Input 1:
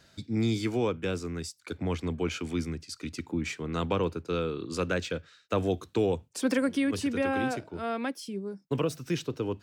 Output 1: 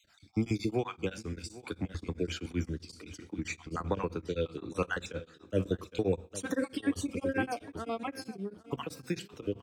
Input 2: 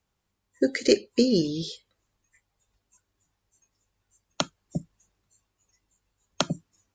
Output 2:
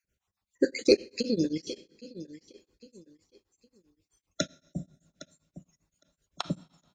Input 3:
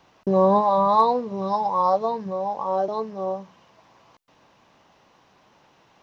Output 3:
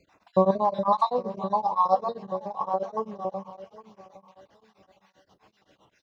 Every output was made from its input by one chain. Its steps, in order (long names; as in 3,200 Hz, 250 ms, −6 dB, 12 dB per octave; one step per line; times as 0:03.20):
time-frequency cells dropped at random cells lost 41%
on a send: repeating echo 811 ms, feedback 26%, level −16 dB
on the sum: coupled-rooms reverb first 0.34 s, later 1.9 s, from −22 dB, DRR 10.5 dB
tremolo along a rectified sine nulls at 7.7 Hz